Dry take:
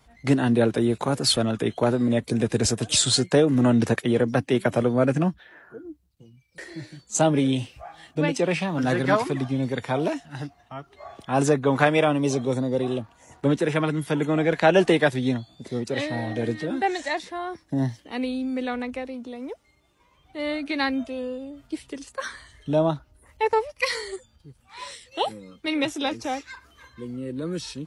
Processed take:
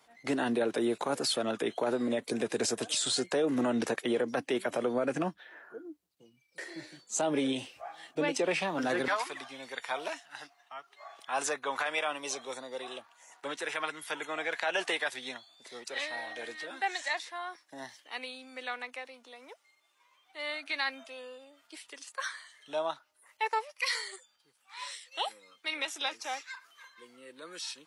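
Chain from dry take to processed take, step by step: HPF 360 Hz 12 dB/oct, from 9.08 s 1000 Hz; limiter -18.5 dBFS, peak gain reduction 11.5 dB; gain -2 dB

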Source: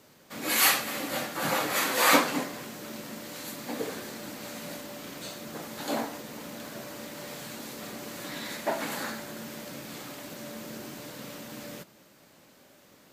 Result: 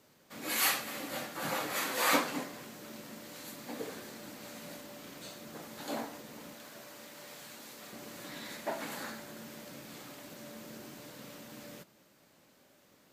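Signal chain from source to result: 6.53–7.93 low shelf 430 Hz -8 dB; gain -7 dB

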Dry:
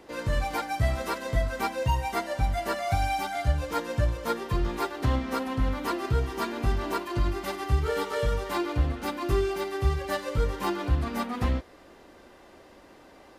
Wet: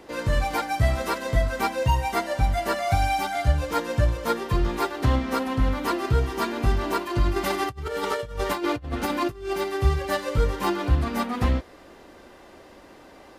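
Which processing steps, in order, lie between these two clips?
7.36–9.53 negative-ratio compressor -31 dBFS, ratio -0.5; gain +4 dB

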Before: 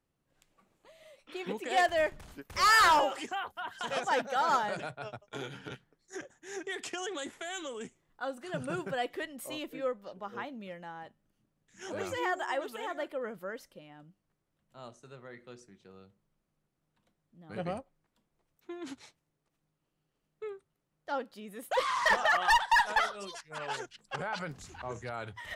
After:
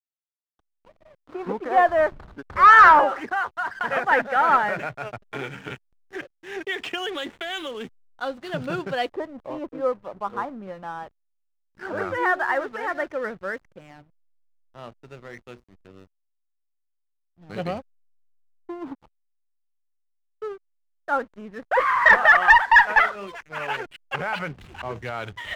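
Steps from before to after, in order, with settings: dynamic EQ 3700 Hz, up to -4 dB, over -53 dBFS, Q 2.5; LFO low-pass saw up 0.11 Hz 900–4600 Hz; added harmonics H 4 -30 dB, 5 -36 dB, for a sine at -9 dBFS; backlash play -46 dBFS; gain +6.5 dB

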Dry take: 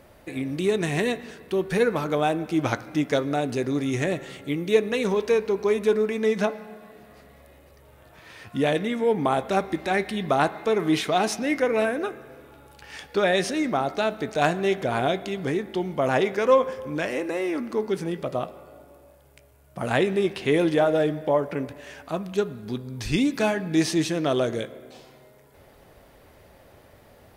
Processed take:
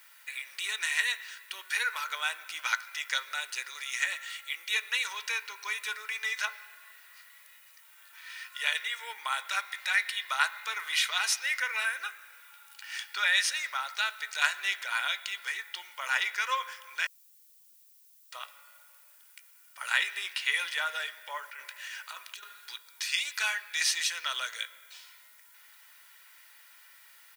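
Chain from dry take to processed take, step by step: HPF 1400 Hz 24 dB/oct; comb 2.1 ms, depth 45%; 17.07–18.32 mute; 21.44–22.75 negative-ratio compressor -45 dBFS, ratio -1; added noise violet -62 dBFS; gain +2.5 dB

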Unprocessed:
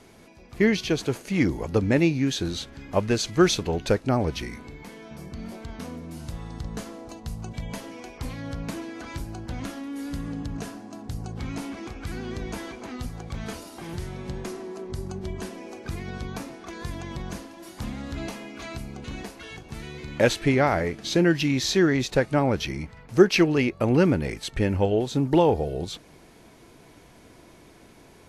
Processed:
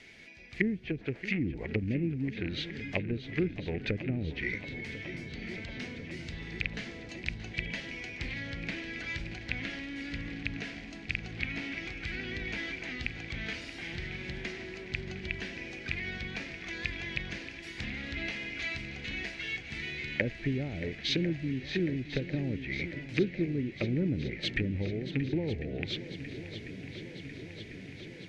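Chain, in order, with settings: rattling part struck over -24 dBFS, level -19 dBFS; LPF 4500 Hz 12 dB/oct; treble ducked by the level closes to 300 Hz, closed at -19 dBFS; resonant high shelf 1500 Hz +10 dB, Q 3; on a send: swung echo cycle 1.047 s, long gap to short 1.5:1, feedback 72%, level -13.5 dB; on the sum: gain -7.5 dB

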